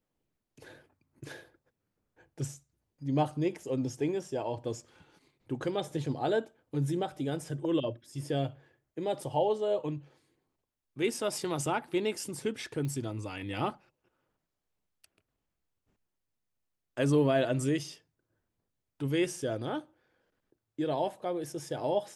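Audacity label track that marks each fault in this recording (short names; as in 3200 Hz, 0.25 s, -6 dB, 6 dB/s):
12.850000	12.850000	pop -26 dBFS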